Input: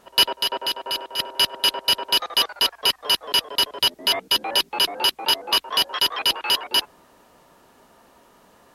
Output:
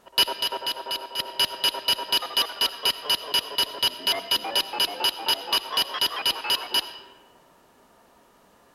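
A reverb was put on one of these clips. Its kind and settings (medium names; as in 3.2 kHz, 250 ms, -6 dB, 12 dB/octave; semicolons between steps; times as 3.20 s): algorithmic reverb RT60 1.6 s, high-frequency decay 0.5×, pre-delay 40 ms, DRR 11.5 dB; trim -3.5 dB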